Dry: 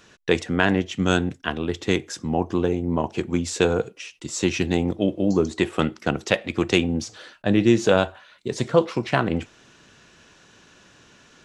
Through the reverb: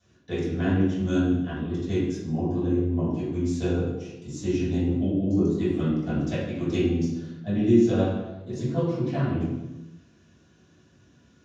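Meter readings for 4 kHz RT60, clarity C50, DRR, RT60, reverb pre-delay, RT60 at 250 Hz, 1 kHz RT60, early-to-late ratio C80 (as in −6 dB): 0.75 s, 0.0 dB, −13.0 dB, 1.0 s, 3 ms, 1.3 s, 0.95 s, 3.0 dB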